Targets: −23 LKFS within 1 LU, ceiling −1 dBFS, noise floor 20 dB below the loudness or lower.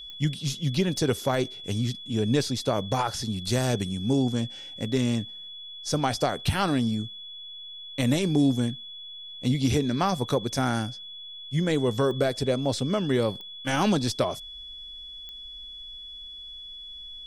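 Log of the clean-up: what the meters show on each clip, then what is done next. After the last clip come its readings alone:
number of clicks 5; interfering tone 3,400 Hz; level of the tone −39 dBFS; integrated loudness −26.5 LKFS; sample peak −12.5 dBFS; target loudness −23.0 LKFS
→ click removal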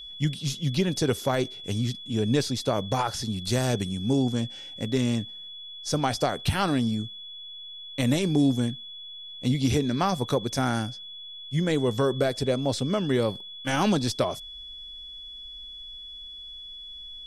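number of clicks 0; interfering tone 3,400 Hz; level of the tone −39 dBFS
→ notch filter 3,400 Hz, Q 30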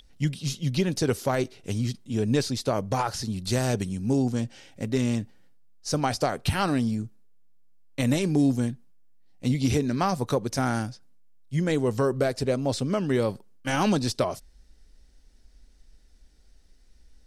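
interfering tone none found; integrated loudness −27.0 LKFS; sample peak −12.5 dBFS; target loudness −23.0 LKFS
→ level +4 dB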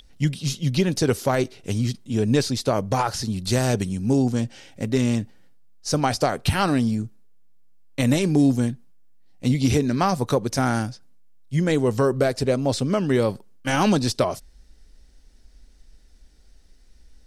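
integrated loudness −23.0 LKFS; sample peak −8.5 dBFS; background noise floor −52 dBFS

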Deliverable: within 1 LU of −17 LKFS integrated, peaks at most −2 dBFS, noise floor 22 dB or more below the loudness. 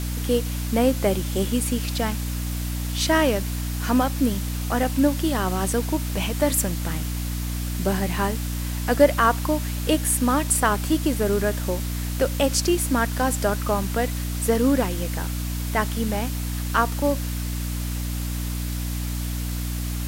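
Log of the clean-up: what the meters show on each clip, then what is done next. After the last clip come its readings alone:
mains hum 60 Hz; hum harmonics up to 300 Hz; level of the hum −25 dBFS; background noise floor −28 dBFS; target noise floor −46 dBFS; integrated loudness −24.0 LKFS; sample peak −3.5 dBFS; target loudness −17.0 LKFS
→ hum removal 60 Hz, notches 5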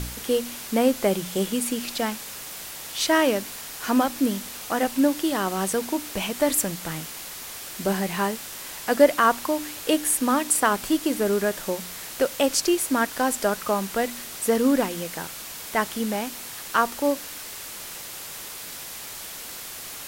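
mains hum none found; background noise floor −38 dBFS; target noise floor −47 dBFS
→ broadband denoise 9 dB, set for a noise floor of −38 dBFS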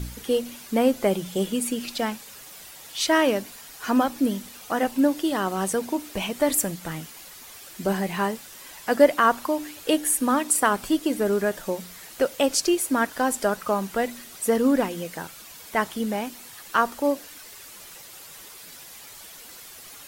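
background noise floor −44 dBFS; target noise floor −47 dBFS
→ broadband denoise 6 dB, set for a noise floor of −44 dBFS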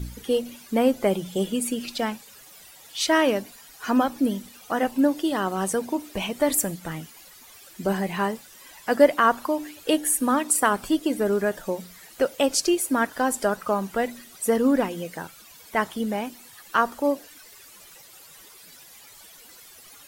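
background noise floor −49 dBFS; integrated loudness −24.5 LKFS; sample peak −4.5 dBFS; target loudness −17.0 LKFS
→ level +7.5 dB
brickwall limiter −2 dBFS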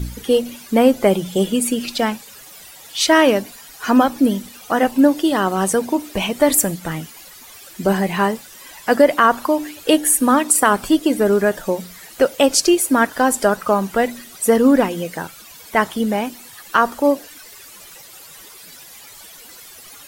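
integrated loudness −17.5 LKFS; sample peak −2.0 dBFS; background noise floor −41 dBFS

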